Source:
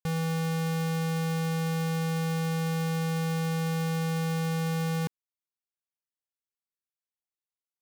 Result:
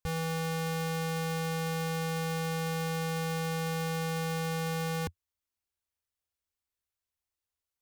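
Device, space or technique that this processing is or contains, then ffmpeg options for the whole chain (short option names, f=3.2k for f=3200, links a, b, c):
car stereo with a boomy subwoofer: -af "lowshelf=f=110:t=q:w=3:g=8.5,alimiter=level_in=5dB:limit=-24dB:level=0:latency=1:release=20,volume=-5dB,volume=3.5dB"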